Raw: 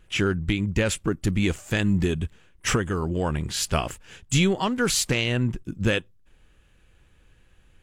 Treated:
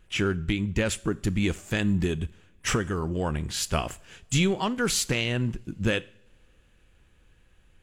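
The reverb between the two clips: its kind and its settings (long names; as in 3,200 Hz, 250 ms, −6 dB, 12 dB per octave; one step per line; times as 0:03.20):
coupled-rooms reverb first 0.54 s, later 4.7 s, from −28 dB, DRR 17.5 dB
level −2.5 dB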